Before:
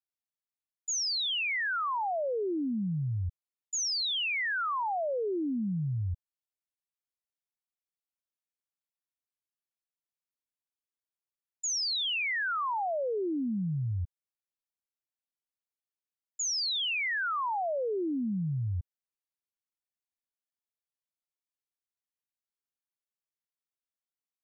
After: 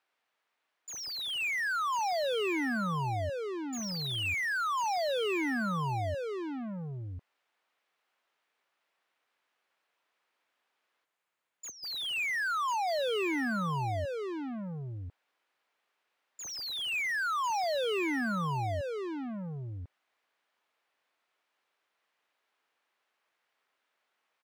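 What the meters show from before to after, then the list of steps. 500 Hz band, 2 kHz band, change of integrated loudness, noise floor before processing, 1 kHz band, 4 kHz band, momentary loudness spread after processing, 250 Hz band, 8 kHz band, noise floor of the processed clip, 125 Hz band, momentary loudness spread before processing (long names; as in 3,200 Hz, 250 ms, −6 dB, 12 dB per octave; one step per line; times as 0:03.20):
+1.0 dB, +0.5 dB, −1.5 dB, below −85 dBFS, +1.5 dB, −4.0 dB, 11 LU, −0.5 dB, can't be measured, −82 dBFS, −2.5 dB, 8 LU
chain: dynamic equaliser 2,500 Hz, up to +5 dB, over −48 dBFS, Q 6.6
gain on a spectral selection 0:11.05–0:11.84, 200–6,300 Hz −28 dB
bass and treble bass −8 dB, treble −13 dB
mid-hump overdrive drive 31 dB, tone 2,600 Hz, clips at −28 dBFS
single-tap delay 1,046 ms −4.5 dB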